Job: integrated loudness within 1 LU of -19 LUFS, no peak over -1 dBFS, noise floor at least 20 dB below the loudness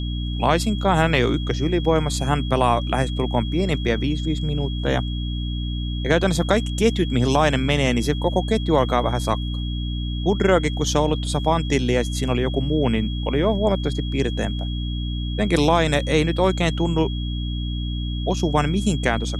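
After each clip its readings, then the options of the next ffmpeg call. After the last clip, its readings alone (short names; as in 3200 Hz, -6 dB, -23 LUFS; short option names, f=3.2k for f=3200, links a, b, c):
hum 60 Hz; harmonics up to 300 Hz; hum level -23 dBFS; steady tone 3300 Hz; tone level -35 dBFS; loudness -21.5 LUFS; peak -2.5 dBFS; loudness target -19.0 LUFS
-> -af "bandreject=f=60:t=h:w=4,bandreject=f=120:t=h:w=4,bandreject=f=180:t=h:w=4,bandreject=f=240:t=h:w=4,bandreject=f=300:t=h:w=4"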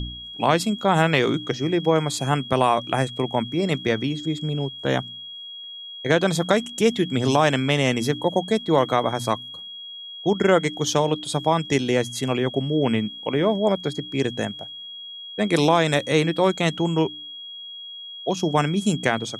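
hum none; steady tone 3300 Hz; tone level -35 dBFS
-> -af "bandreject=f=3.3k:w=30"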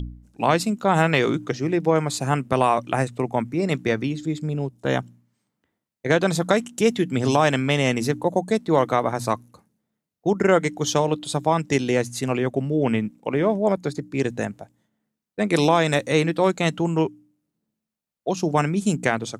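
steady tone none; loudness -22.5 LUFS; peak -3.0 dBFS; loudness target -19.0 LUFS
-> -af "volume=3.5dB,alimiter=limit=-1dB:level=0:latency=1"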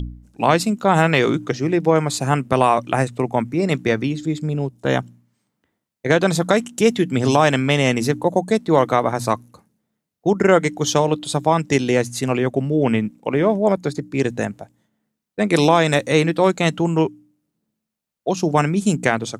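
loudness -19.0 LUFS; peak -1.0 dBFS; noise floor -80 dBFS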